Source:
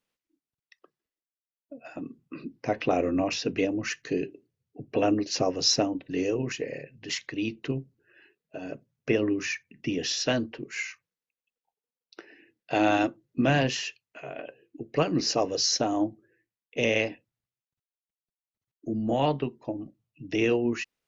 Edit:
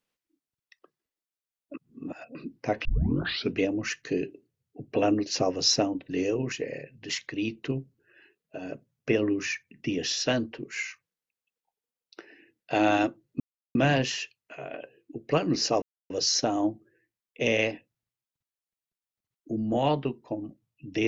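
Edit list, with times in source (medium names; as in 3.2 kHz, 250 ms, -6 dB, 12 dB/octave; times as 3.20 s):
1.74–2.35 s: reverse
2.85 s: tape start 0.67 s
13.40 s: insert silence 0.35 s
15.47 s: insert silence 0.28 s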